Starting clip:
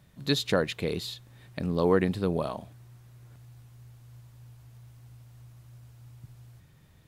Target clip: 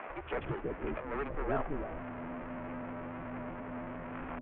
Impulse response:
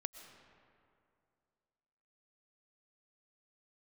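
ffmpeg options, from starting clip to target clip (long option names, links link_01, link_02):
-filter_complex "[0:a]aeval=exprs='val(0)+0.5*0.0316*sgn(val(0))':channel_layout=same,atempo=1.6,equalizer=frequency=170:width=4.8:gain=9.5,asplit=2[link_01][link_02];[link_02]alimiter=limit=-17dB:level=0:latency=1:release=385,volume=2.5dB[link_03];[link_01][link_03]amix=inputs=2:normalize=0,equalizer=frequency=100:width_type=o:width=0.67:gain=-8,equalizer=frequency=250:width_type=o:width=0.67:gain=-8,equalizer=frequency=1600:width_type=o:width=0.67:gain=-6,asetrate=66075,aresample=44100,atempo=0.66742,aresample=8000,acrusher=bits=6:mix=0:aa=0.000001,aresample=44100,adynamicsmooth=sensitivity=4:basefreq=1700,asoftclip=type=tanh:threshold=-20.5dB,acompressor=threshold=-29dB:ratio=3,acrossover=split=210|730[link_04][link_05][link_06];[link_04]adelay=90[link_07];[link_05]adelay=330[link_08];[link_07][link_08][link_06]amix=inputs=3:normalize=0,highpass=frequency=320:width_type=q:width=0.5412,highpass=frequency=320:width_type=q:width=1.307,lowpass=frequency=2600:width_type=q:width=0.5176,lowpass=frequency=2600:width_type=q:width=0.7071,lowpass=frequency=2600:width_type=q:width=1.932,afreqshift=-290,volume=1dB"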